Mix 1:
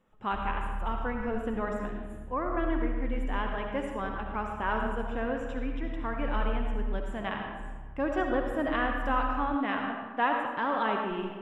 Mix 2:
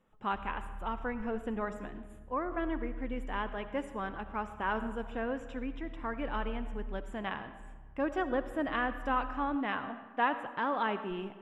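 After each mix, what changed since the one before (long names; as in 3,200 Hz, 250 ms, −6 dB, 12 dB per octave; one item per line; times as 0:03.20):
speech: send −10.5 dB
background −9.0 dB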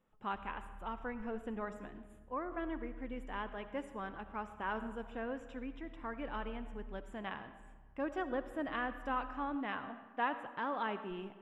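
speech −5.5 dB
background −8.5 dB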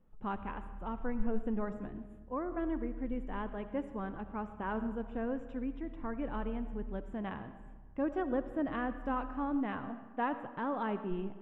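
speech: add spectral tilt −3.5 dB per octave
background +5.5 dB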